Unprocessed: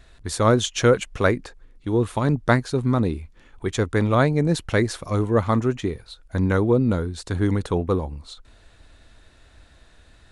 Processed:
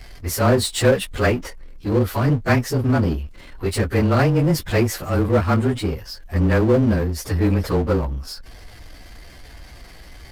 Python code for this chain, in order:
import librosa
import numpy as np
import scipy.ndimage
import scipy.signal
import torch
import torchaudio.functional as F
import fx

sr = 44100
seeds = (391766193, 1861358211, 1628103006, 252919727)

y = fx.partial_stretch(x, sr, pct=108)
y = fx.power_curve(y, sr, exponent=0.7)